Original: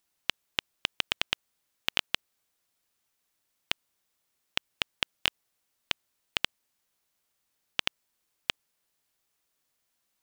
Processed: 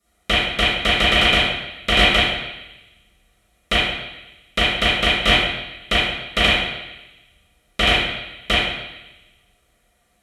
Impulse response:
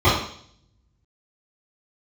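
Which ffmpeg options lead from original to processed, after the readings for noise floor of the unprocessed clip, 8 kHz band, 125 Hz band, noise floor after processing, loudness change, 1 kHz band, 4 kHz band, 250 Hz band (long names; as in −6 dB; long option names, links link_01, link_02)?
−79 dBFS, +10.0 dB, +25.5 dB, −64 dBFS, +15.5 dB, +20.0 dB, +15.0 dB, +24.0 dB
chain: -filter_complex "[0:a]equalizer=frequency=9600:width=0.5:gain=11[link_01];[1:a]atrim=start_sample=2205,asetrate=26019,aresample=44100[link_02];[link_01][link_02]afir=irnorm=-1:irlink=0,volume=-7dB"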